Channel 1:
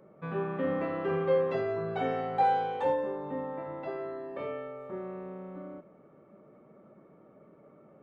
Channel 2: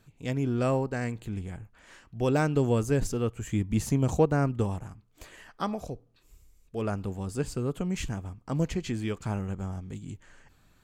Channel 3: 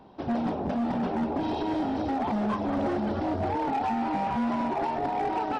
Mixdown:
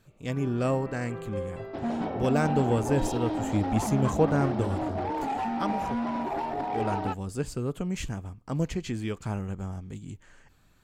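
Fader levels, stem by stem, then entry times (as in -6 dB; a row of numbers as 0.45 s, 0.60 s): -9.5 dB, -0.5 dB, -2.5 dB; 0.05 s, 0.00 s, 1.55 s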